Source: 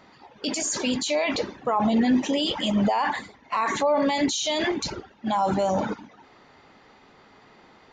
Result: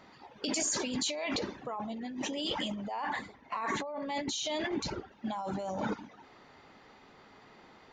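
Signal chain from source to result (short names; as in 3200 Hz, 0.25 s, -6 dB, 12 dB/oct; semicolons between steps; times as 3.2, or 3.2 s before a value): 2.91–5.12 high shelf 3400 Hz -7.5 dB; negative-ratio compressor -28 dBFS, ratio -1; gain -7 dB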